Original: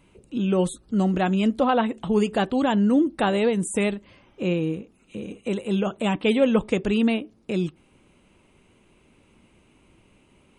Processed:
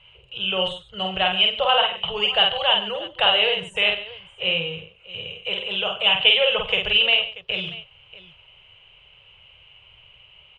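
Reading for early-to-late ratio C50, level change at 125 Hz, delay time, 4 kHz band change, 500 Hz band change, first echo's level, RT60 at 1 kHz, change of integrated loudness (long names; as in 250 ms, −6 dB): no reverb audible, −12.0 dB, 48 ms, +19.5 dB, −2.0 dB, −3.5 dB, no reverb audible, +3.5 dB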